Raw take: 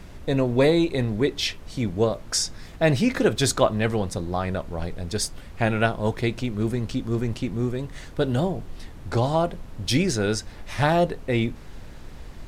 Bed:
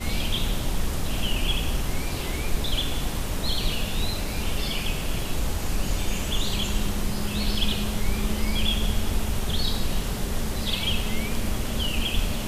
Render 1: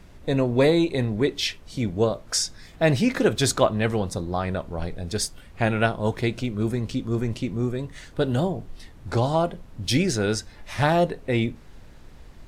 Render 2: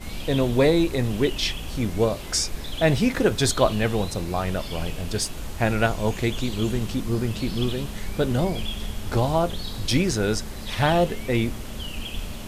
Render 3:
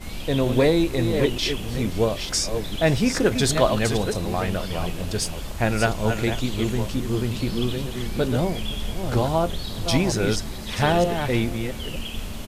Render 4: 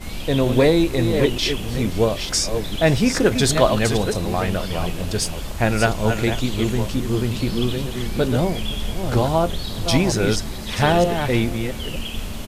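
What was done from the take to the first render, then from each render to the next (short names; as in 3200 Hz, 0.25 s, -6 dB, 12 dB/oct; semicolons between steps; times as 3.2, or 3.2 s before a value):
noise print and reduce 6 dB
add bed -7 dB
reverse delay 0.46 s, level -7 dB; echo 0.523 s -22.5 dB
gain +3 dB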